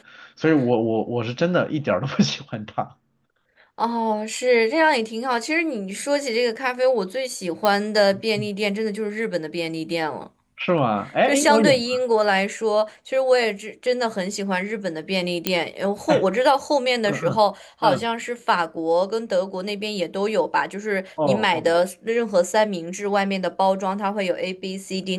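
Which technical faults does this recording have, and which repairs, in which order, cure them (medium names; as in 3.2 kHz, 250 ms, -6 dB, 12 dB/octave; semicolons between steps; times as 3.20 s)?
7.65 s: pop -7 dBFS
15.47 s: pop -3 dBFS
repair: de-click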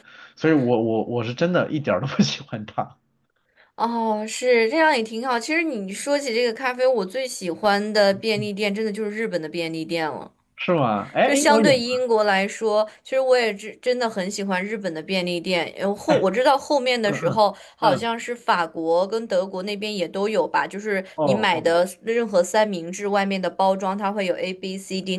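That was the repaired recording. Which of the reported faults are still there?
nothing left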